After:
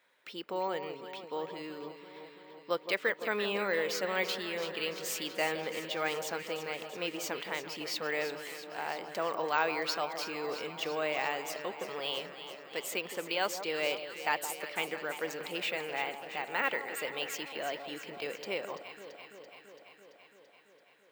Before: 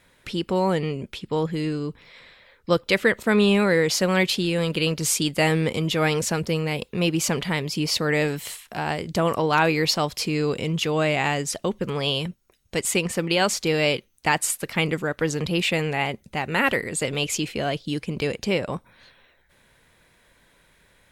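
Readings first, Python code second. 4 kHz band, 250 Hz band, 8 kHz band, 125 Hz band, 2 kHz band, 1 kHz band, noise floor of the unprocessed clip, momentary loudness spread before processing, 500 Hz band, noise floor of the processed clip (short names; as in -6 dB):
-10.5 dB, -18.5 dB, -15.0 dB, -27.0 dB, -9.0 dB, -8.5 dB, -61 dBFS, 8 LU, -11.0 dB, -61 dBFS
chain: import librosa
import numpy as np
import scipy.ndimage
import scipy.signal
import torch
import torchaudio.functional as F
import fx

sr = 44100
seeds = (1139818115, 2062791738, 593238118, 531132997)

y = scipy.signal.sosfilt(scipy.signal.butter(2, 490.0, 'highpass', fs=sr, output='sos'), x)
y = fx.high_shelf(y, sr, hz=5100.0, db=-8.0)
y = fx.echo_alternate(y, sr, ms=168, hz=1200.0, feedback_pct=84, wet_db=-9.5)
y = np.repeat(scipy.signal.resample_poly(y, 1, 2), 2)[:len(y)]
y = F.gain(torch.from_numpy(y), -8.5).numpy()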